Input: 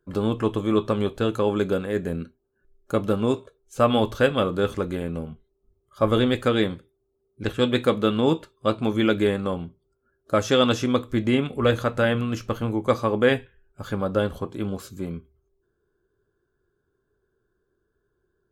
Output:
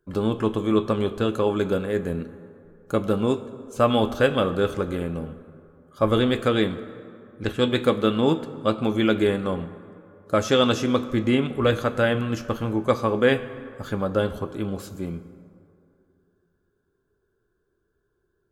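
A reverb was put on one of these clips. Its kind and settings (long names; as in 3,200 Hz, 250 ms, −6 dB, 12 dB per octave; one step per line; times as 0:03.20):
dense smooth reverb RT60 2.6 s, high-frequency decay 0.5×, DRR 12.5 dB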